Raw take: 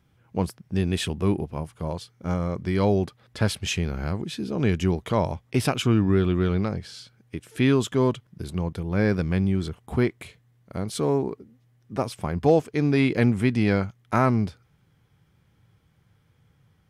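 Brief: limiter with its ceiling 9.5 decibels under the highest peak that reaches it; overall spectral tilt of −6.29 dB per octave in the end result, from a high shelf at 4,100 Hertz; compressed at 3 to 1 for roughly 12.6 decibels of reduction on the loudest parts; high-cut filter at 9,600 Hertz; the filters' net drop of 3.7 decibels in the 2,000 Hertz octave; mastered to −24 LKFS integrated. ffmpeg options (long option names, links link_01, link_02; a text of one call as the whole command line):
ffmpeg -i in.wav -af "lowpass=9600,equalizer=frequency=2000:width_type=o:gain=-3.5,highshelf=frequency=4100:gain=-5.5,acompressor=threshold=-33dB:ratio=3,volume=15.5dB,alimiter=limit=-13.5dB:level=0:latency=1" out.wav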